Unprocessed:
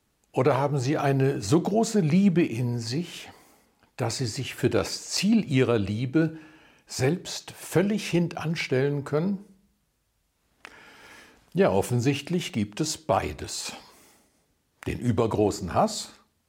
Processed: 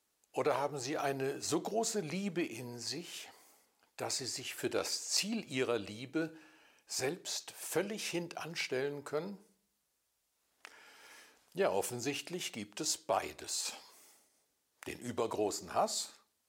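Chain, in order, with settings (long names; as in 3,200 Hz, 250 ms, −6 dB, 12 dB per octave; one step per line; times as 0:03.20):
bass and treble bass −15 dB, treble +6 dB
level −8.5 dB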